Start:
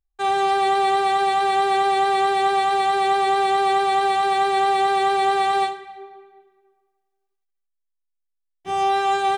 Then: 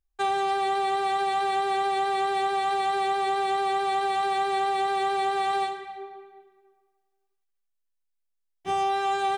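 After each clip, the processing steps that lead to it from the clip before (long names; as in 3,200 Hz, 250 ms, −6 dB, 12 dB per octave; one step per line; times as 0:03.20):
downward compressor, threshold −23 dBFS, peak gain reduction 8 dB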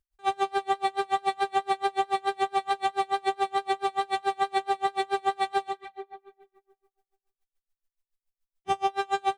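tremolo with a sine in dB 7 Hz, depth 33 dB
level +4 dB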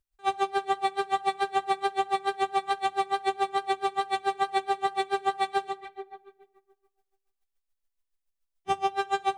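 rectangular room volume 2,500 cubic metres, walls furnished, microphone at 0.33 metres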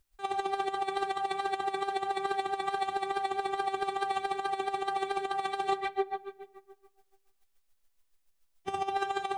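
compressor whose output falls as the input rises −32 dBFS, ratio −0.5
level +3 dB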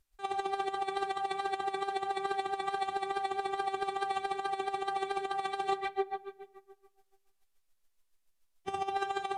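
level −2 dB
Ogg Vorbis 128 kbit/s 32,000 Hz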